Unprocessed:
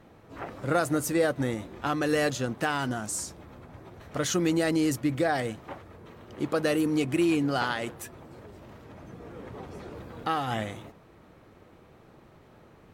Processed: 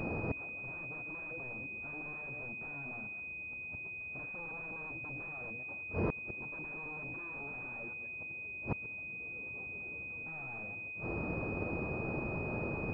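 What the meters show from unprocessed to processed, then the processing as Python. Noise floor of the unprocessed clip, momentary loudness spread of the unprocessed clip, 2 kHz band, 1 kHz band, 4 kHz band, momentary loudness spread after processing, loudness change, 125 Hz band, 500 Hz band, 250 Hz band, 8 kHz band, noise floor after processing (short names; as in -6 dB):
-55 dBFS, 21 LU, -3.0 dB, -15.0 dB, under -35 dB, 4 LU, -12.0 dB, -8.0 dB, -14.0 dB, -15.0 dB, under -40 dB, -44 dBFS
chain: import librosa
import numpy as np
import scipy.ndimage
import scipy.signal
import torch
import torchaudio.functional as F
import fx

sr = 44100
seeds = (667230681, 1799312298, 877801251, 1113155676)

y = fx.reverse_delay(x, sr, ms=128, wet_db=-11.5)
y = 10.0 ** (-30.0 / 20.0) * (np.abs((y / 10.0 ** (-30.0 / 20.0) + 3.0) % 4.0 - 2.0) - 1.0)
y = fx.gate_flip(y, sr, shuts_db=-38.0, range_db=-29)
y = fx.air_absorb(y, sr, metres=260.0)
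y = fx.pwm(y, sr, carrier_hz=2500.0)
y = y * librosa.db_to_amplitude(17.0)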